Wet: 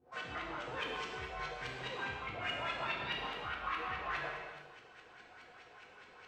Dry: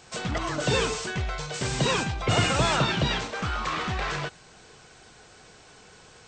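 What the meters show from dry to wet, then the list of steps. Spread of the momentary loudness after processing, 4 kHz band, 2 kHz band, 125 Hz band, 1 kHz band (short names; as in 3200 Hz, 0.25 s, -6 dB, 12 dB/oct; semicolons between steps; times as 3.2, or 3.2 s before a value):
18 LU, -14.0 dB, -9.0 dB, -23.5 dB, -10.5 dB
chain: reverse; compressor, threshold -32 dBFS, peak gain reduction 13.5 dB; reverse; high shelf 2200 Hz -10 dB; LFO low-pass saw up 4.8 Hz 240–2900 Hz; pre-emphasis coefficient 0.97; non-linear reverb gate 0.49 s falling, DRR -2.5 dB; gain +9.5 dB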